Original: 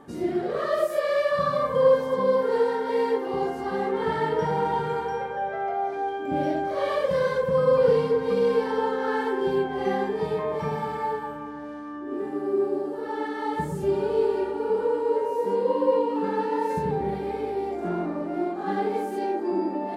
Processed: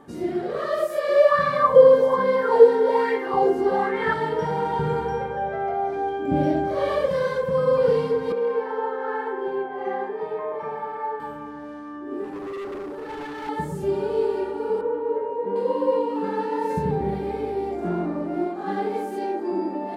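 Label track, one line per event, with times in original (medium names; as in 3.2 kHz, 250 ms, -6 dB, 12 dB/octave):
1.080000	4.140000	sweeping bell 1.2 Hz 340–2200 Hz +14 dB
4.790000	7.090000	bass shelf 280 Hz +12 dB
8.320000	11.200000	three-band isolator lows -19 dB, under 330 Hz, highs -17 dB, over 2.2 kHz
12.240000	13.490000	hard clipper -30.5 dBFS
14.810000	15.560000	distance through air 470 m
16.640000	18.470000	bass shelf 240 Hz +6.5 dB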